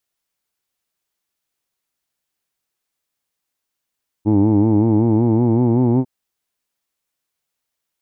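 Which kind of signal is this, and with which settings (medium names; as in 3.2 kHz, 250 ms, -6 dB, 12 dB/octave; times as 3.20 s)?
formant-synthesis vowel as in who'd, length 1.80 s, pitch 102 Hz, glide +3.5 st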